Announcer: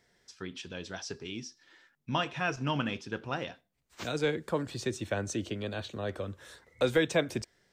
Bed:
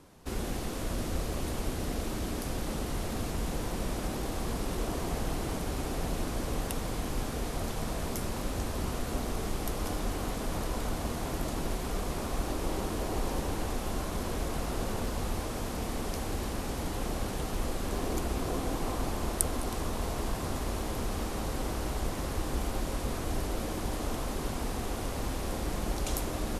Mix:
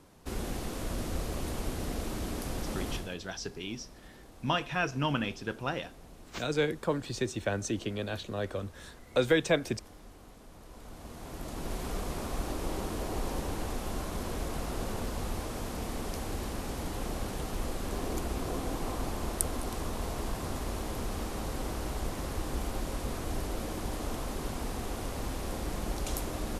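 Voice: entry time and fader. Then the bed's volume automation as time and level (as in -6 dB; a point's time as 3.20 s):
2.35 s, +1.0 dB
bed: 2.94 s -1.5 dB
3.18 s -19 dB
10.57 s -19 dB
11.80 s -2 dB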